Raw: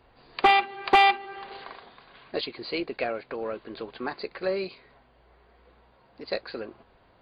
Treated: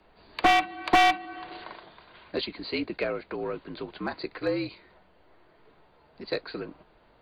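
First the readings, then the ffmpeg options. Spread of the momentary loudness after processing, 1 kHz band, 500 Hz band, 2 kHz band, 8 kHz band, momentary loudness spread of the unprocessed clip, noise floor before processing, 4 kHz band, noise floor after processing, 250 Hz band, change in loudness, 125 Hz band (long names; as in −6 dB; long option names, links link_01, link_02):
20 LU, −2.0 dB, −1.0 dB, −1.0 dB, can't be measured, 21 LU, −60 dBFS, −1.0 dB, −61 dBFS, +3.5 dB, −1.5 dB, +5.5 dB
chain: -filter_complex "[0:a]afreqshift=-58,acrossover=split=170[link_01][link_02];[link_02]aeval=exprs='clip(val(0),-1,0.119)':channel_layout=same[link_03];[link_01][link_03]amix=inputs=2:normalize=0"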